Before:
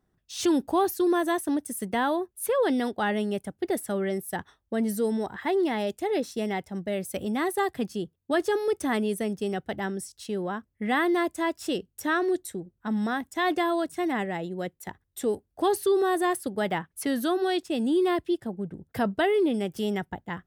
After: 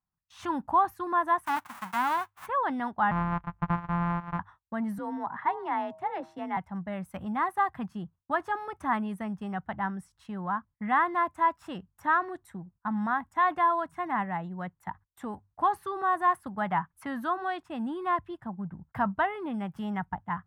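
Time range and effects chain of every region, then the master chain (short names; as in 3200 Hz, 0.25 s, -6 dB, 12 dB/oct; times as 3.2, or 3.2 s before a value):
1.45–2.45 spectral whitening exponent 0.1 + HPF 260 Hz 6 dB/oct + mismatched tape noise reduction encoder only
3.11–4.39 sample sorter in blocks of 256 samples + LPF 2700 Hz
4.98–6.57 high shelf 7000 Hz -12 dB + de-hum 149.9 Hz, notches 7 + frequency shift +39 Hz
whole clip: notches 50/100 Hz; gate -52 dBFS, range -17 dB; EQ curve 180 Hz 0 dB, 440 Hz -18 dB, 990 Hz +9 dB, 4700 Hz -20 dB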